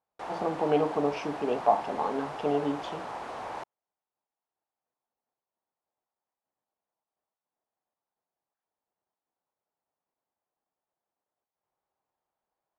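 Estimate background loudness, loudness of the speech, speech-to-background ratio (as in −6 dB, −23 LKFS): −38.5 LKFS, −29.5 LKFS, 9.0 dB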